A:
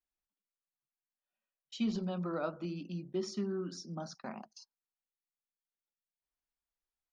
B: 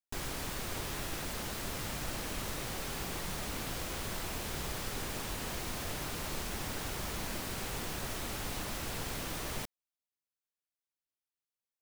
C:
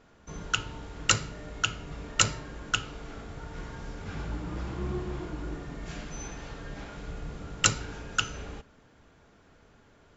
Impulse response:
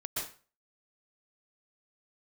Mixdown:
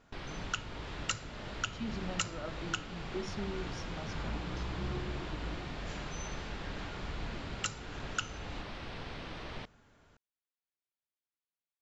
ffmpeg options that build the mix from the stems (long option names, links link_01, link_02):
-filter_complex "[0:a]volume=-4dB[link_01];[1:a]lowpass=frequency=4200:width=0.5412,lowpass=frequency=4200:width=1.3066,volume=-3.5dB[link_02];[2:a]equalizer=frequency=410:width=1.5:gain=-4,volume=-4dB[link_03];[link_01][link_02][link_03]amix=inputs=3:normalize=0,alimiter=limit=-18.5dB:level=0:latency=1:release=378"